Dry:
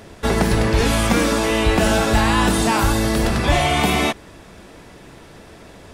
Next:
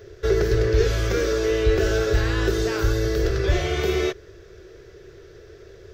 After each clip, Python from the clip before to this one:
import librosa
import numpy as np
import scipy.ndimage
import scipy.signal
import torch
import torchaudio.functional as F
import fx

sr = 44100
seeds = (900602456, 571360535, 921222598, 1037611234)

y = fx.curve_eq(x, sr, hz=(110.0, 260.0, 380.0, 880.0, 1500.0, 2500.0, 6100.0, 9500.0, 14000.0), db=(0, -24, 9, -20, -3, -10, -3, -26, -6))
y = y * librosa.db_to_amplitude(-1.5)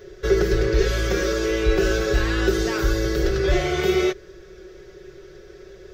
y = x + 0.69 * np.pad(x, (int(5.4 * sr / 1000.0), 0))[:len(x)]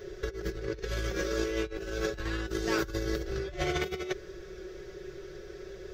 y = fx.over_compress(x, sr, threshold_db=-25.0, ratio=-0.5)
y = y * librosa.db_to_amplitude(-6.5)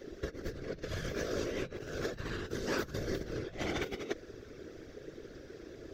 y = fx.whisperise(x, sr, seeds[0])
y = y * librosa.db_to_amplitude(-5.0)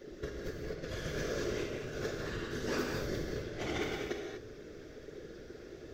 y = fx.rev_gated(x, sr, seeds[1], gate_ms=270, shape='flat', drr_db=-0.5)
y = y * librosa.db_to_amplitude(-3.0)